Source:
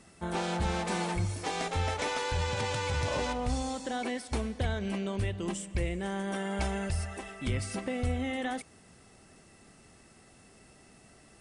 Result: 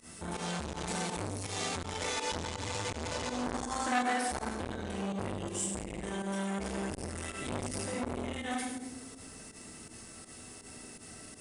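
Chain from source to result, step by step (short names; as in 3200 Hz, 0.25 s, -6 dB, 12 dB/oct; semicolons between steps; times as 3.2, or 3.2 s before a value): compressor 3:1, threshold -38 dBFS, peak gain reduction 9.5 dB; 3.46–4.53 band shelf 1100 Hz +11 dB; 7.14–7.67 doubler 49 ms -6 dB; reverb, pre-delay 3 ms, DRR -4 dB; pump 82 bpm, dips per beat 2, -17 dB, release 83 ms; high shelf 4900 Hz +10.5 dB; narrowing echo 0.102 s, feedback 74%, band-pass 340 Hz, level -6 dB; core saturation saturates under 1700 Hz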